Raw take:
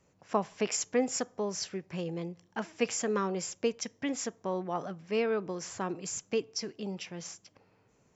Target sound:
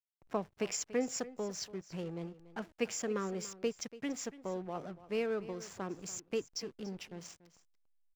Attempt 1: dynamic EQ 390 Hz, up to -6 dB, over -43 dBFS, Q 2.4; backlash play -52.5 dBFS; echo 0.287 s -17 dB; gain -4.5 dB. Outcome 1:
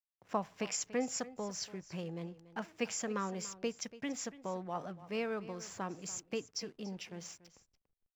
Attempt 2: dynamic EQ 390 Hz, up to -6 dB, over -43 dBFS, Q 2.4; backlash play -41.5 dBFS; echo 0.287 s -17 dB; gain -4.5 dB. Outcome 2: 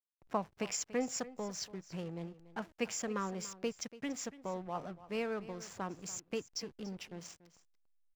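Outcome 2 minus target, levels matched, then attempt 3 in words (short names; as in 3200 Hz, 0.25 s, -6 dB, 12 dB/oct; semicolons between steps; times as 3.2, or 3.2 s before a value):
1000 Hz band +4.0 dB
dynamic EQ 950 Hz, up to -6 dB, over -43 dBFS, Q 2.4; backlash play -41.5 dBFS; echo 0.287 s -17 dB; gain -4.5 dB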